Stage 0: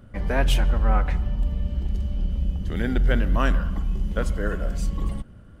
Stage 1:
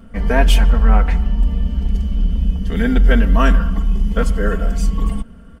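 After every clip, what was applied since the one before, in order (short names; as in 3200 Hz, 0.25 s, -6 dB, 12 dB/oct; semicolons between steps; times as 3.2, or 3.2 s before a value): notch 3900 Hz, Q 13; comb 4.4 ms, depth 94%; gain +4.5 dB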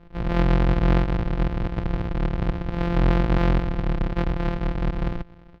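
sample sorter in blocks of 256 samples; air absorption 320 m; gain -8 dB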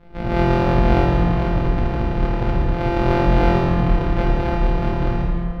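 plate-style reverb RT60 2.3 s, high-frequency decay 0.6×, DRR -5.5 dB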